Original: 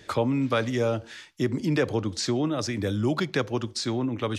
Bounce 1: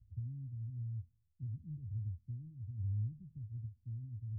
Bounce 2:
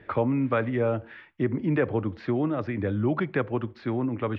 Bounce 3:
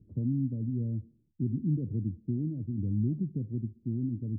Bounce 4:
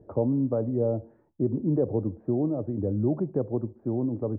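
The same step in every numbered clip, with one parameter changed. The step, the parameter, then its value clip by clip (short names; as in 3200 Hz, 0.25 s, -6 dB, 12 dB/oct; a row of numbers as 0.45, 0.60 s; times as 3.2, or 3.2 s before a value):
inverse Chebyshev low-pass, stop band from: 570, 11000, 1400, 4000 Hz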